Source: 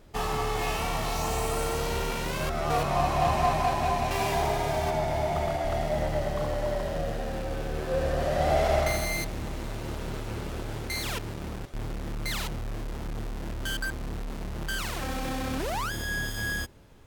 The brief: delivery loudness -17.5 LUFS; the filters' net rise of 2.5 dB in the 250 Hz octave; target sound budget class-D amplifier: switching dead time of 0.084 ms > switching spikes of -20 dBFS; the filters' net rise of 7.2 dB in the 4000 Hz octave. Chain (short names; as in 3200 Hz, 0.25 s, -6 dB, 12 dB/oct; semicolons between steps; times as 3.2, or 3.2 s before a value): bell 250 Hz +3.5 dB; bell 4000 Hz +9 dB; switching dead time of 0.084 ms; switching spikes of -20 dBFS; gain +9.5 dB